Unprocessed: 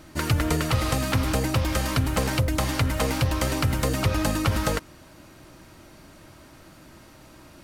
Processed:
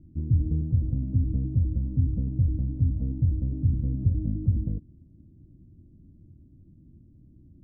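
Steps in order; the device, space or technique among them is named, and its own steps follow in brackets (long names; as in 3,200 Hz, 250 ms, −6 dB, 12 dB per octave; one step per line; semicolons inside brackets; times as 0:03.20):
the neighbour's flat through the wall (low-pass filter 260 Hz 24 dB per octave; parametric band 85 Hz +5.5 dB 0.76 octaves)
level −2 dB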